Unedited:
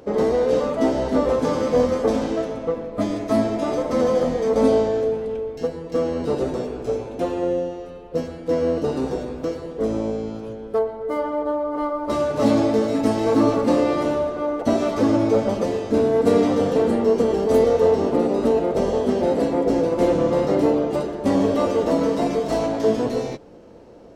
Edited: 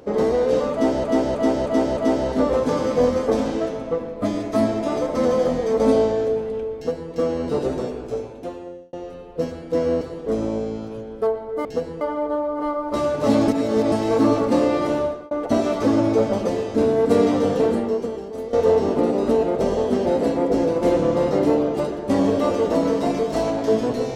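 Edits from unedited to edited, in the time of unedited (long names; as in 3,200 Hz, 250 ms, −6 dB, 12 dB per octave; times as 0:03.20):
0:00.73–0:01.04: repeat, 5 plays
0:05.52–0:05.88: duplicate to 0:11.17
0:06.60–0:07.69: fade out
0:08.77–0:09.53: remove
0:12.64–0:13.08: reverse
0:14.21–0:14.47: fade out
0:16.82–0:17.69: fade out quadratic, to −15 dB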